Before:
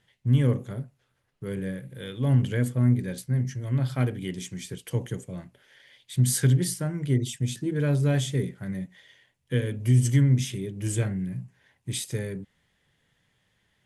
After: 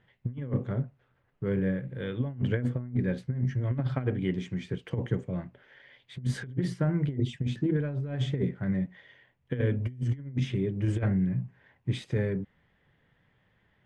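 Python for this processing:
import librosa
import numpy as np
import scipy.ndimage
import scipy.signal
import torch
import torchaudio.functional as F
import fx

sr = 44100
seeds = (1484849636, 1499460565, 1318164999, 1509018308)

y = scipy.signal.sosfilt(scipy.signal.butter(2, 2000.0, 'lowpass', fs=sr, output='sos'), x)
y = fx.over_compress(y, sr, threshold_db=-27.0, ratio=-0.5)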